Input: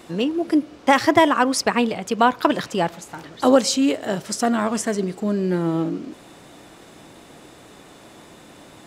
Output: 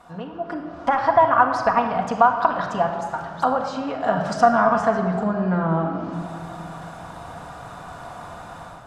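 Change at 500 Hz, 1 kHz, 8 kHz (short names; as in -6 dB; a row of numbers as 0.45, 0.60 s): -0.5, +4.0, -16.0 dB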